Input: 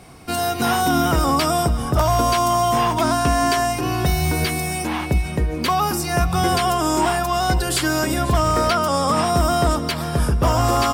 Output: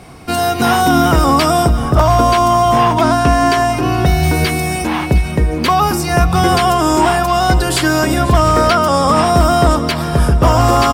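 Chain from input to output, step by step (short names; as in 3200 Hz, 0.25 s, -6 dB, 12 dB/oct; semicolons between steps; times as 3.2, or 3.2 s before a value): high shelf 5100 Hz -5 dB, from 1.79 s -10.5 dB, from 4.23 s -5.5 dB; echo 0.71 s -18 dB; gain +7 dB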